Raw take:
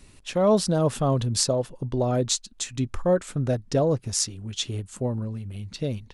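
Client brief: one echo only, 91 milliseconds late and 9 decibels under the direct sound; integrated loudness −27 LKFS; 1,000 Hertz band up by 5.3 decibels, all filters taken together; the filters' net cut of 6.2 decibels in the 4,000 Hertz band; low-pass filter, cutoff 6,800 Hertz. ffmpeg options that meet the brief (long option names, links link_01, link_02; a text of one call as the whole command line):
ffmpeg -i in.wav -af "lowpass=6800,equalizer=frequency=1000:width_type=o:gain=7.5,equalizer=frequency=4000:width_type=o:gain=-7.5,aecho=1:1:91:0.355,volume=-2.5dB" out.wav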